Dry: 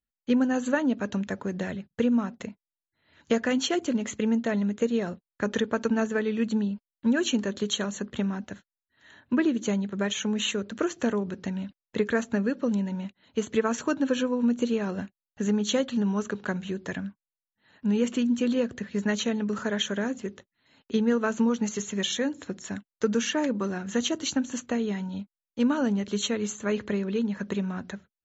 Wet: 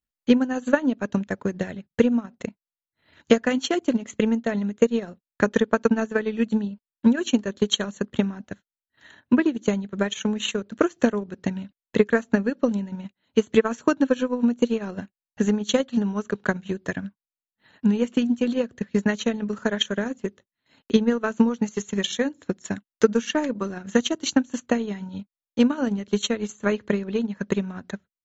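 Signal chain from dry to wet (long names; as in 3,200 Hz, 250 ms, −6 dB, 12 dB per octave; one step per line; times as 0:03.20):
transient designer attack +9 dB, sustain −10 dB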